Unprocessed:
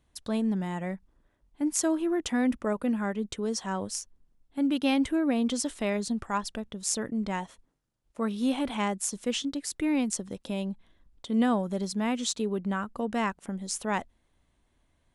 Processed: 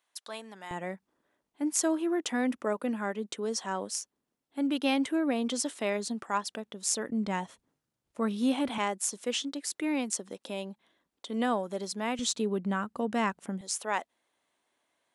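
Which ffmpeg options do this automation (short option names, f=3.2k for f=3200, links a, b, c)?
-af "asetnsamples=n=441:p=0,asendcmd='0.71 highpass f 280;7.1 highpass f 110;8.78 highpass f 330;12.19 highpass f 130;13.61 highpass f 460',highpass=840"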